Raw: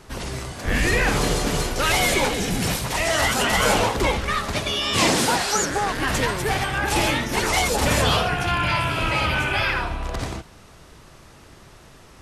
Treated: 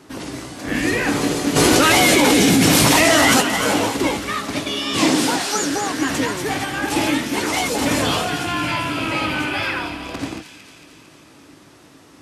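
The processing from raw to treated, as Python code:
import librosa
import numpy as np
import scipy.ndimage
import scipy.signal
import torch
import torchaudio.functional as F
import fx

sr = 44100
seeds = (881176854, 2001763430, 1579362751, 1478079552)

y = scipy.signal.sosfilt(scipy.signal.butter(2, 120.0, 'highpass', fs=sr, output='sos'), x)
y = fx.peak_eq(y, sr, hz=290.0, db=14.0, octaves=0.33)
y = fx.doubler(y, sr, ms=19.0, db=-12.0)
y = fx.echo_wet_highpass(y, sr, ms=226, feedback_pct=64, hz=2900.0, wet_db=-6.5)
y = fx.env_flatten(y, sr, amount_pct=100, at=(1.55, 3.4), fade=0.02)
y = F.gain(torch.from_numpy(y), -1.0).numpy()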